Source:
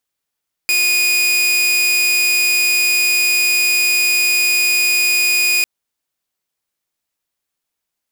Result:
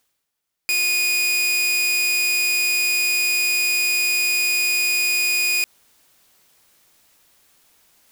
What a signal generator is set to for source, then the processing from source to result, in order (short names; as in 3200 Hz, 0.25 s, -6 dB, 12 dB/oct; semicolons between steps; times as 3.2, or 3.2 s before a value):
tone saw 2470 Hz -10 dBFS 4.95 s
reverse; upward compressor, threshold -39 dBFS; reverse; limiter -15 dBFS